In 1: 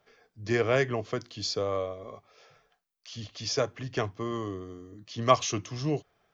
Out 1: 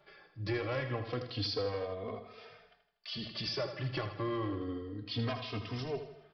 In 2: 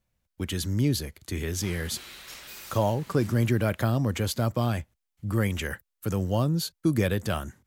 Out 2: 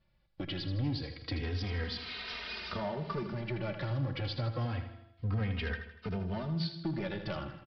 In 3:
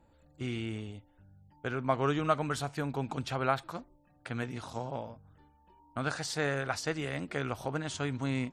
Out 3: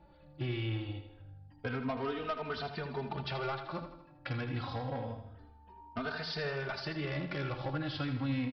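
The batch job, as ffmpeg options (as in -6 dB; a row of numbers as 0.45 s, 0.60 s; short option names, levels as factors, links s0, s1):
-filter_complex "[0:a]bandreject=f=168.7:t=h:w=4,bandreject=f=337.4:t=h:w=4,bandreject=f=506.1:t=h:w=4,bandreject=f=674.8:t=h:w=4,bandreject=f=843.5:t=h:w=4,bandreject=f=1012.2:t=h:w=4,bandreject=f=1180.9:t=h:w=4,bandreject=f=1349.6:t=h:w=4,bandreject=f=1518.3:t=h:w=4,bandreject=f=1687:t=h:w=4,bandreject=f=1855.7:t=h:w=4,bandreject=f=2024.4:t=h:w=4,bandreject=f=2193.1:t=h:w=4,bandreject=f=2361.8:t=h:w=4,bandreject=f=2530.5:t=h:w=4,bandreject=f=2699.2:t=h:w=4,bandreject=f=2867.9:t=h:w=4,bandreject=f=3036.6:t=h:w=4,bandreject=f=3205.3:t=h:w=4,bandreject=f=3374:t=h:w=4,bandreject=f=3542.7:t=h:w=4,bandreject=f=3711.4:t=h:w=4,bandreject=f=3880.1:t=h:w=4,bandreject=f=4048.8:t=h:w=4,bandreject=f=4217.5:t=h:w=4,bandreject=f=4386.2:t=h:w=4,bandreject=f=4554.9:t=h:w=4,bandreject=f=4723.6:t=h:w=4,bandreject=f=4892.3:t=h:w=4,bandreject=f=5061:t=h:w=4,bandreject=f=5229.7:t=h:w=4,bandreject=f=5398.4:t=h:w=4,acompressor=threshold=0.0141:ratio=4,aresample=11025,asoftclip=type=hard:threshold=0.0188,aresample=44100,aecho=1:1:80|160|240|320|400:0.335|0.164|0.0804|0.0394|0.0193,asplit=2[s0][s1];[s1]adelay=3,afreqshift=-0.28[s2];[s0][s2]amix=inputs=2:normalize=1,volume=2.37"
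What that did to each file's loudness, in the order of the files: -7.5 LU, -8.5 LU, -3.5 LU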